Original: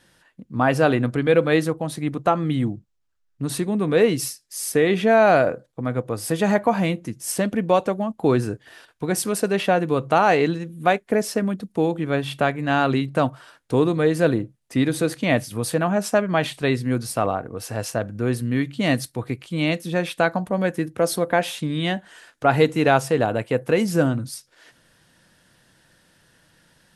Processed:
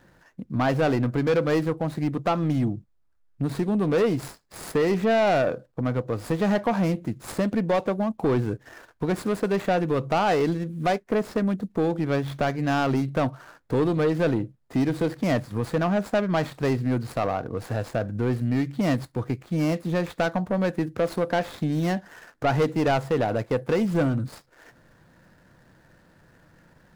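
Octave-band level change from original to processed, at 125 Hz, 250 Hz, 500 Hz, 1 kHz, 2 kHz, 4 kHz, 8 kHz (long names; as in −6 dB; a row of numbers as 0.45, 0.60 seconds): −1.0, −2.0, −4.0, −4.5, −6.5, −6.5, −13.0 decibels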